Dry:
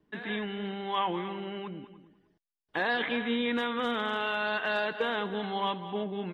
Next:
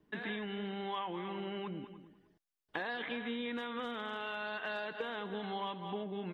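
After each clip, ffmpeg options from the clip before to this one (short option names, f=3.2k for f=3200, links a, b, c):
-af "acompressor=threshold=-36dB:ratio=6"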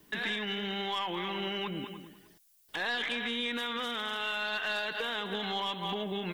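-af "crystalizer=i=7.5:c=0,aeval=exprs='0.188*(cos(1*acos(clip(val(0)/0.188,-1,1)))-cos(1*PI/2))+0.0422*(cos(5*acos(clip(val(0)/0.188,-1,1)))-cos(5*PI/2))+0.00596*(cos(8*acos(clip(val(0)/0.188,-1,1)))-cos(8*PI/2))':c=same,alimiter=level_in=0.5dB:limit=-24dB:level=0:latency=1:release=204,volume=-0.5dB"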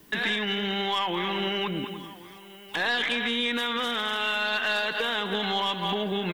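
-af "aecho=1:1:1077:0.112,volume=6.5dB"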